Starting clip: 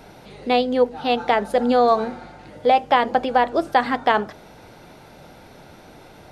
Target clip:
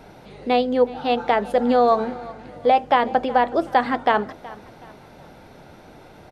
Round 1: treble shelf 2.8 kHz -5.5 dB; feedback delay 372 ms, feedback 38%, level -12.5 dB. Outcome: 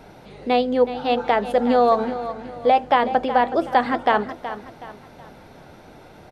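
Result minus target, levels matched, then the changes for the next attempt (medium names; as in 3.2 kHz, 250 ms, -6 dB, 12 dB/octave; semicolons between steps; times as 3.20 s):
echo-to-direct +7.5 dB
change: feedback delay 372 ms, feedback 38%, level -20 dB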